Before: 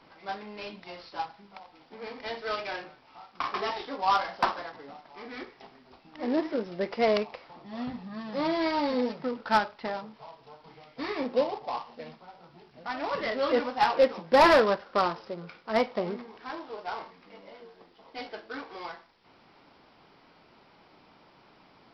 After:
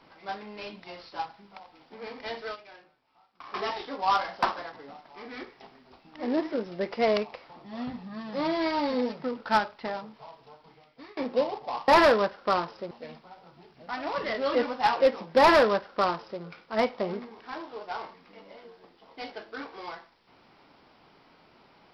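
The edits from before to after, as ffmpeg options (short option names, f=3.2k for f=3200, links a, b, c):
-filter_complex "[0:a]asplit=6[a][b][c][d][e][f];[a]atrim=end=2.57,asetpts=PTS-STARTPTS,afade=t=out:st=2.44:d=0.13:silence=0.177828[g];[b]atrim=start=2.57:end=3.46,asetpts=PTS-STARTPTS,volume=-15dB[h];[c]atrim=start=3.46:end=11.17,asetpts=PTS-STARTPTS,afade=t=in:d=0.13:silence=0.177828,afade=t=out:st=6.94:d=0.77:silence=0.0707946[i];[d]atrim=start=11.17:end=11.882,asetpts=PTS-STARTPTS,afade=t=in:d=0.004:c=hsin:silence=0.0707946[j];[e]atrim=start=14.358:end=15.392[k];[f]atrim=start=11.878[l];[g][h][i][j]concat=n=4:v=0:a=1[m];[m][k]acrossfade=d=0.004:c1=hsin:c2=hsin[n];[n][l]acrossfade=d=0.004:c1=hsin:c2=hsin"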